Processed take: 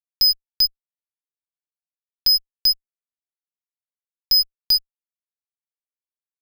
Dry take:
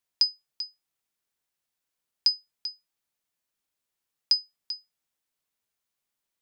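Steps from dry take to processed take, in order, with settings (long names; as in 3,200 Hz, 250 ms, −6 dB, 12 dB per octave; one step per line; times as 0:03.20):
0:00.65–0:02.34: phaser with its sweep stopped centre 1,500 Hz, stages 8
0:04.34–0:04.75: parametric band 460 Hz +7.5 dB 2 octaves
fuzz pedal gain 48 dB, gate −50 dBFS
tape wow and flutter 19 cents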